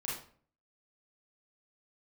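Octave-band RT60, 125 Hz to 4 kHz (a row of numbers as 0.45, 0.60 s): 0.65, 0.60, 0.50, 0.45, 0.40, 0.35 s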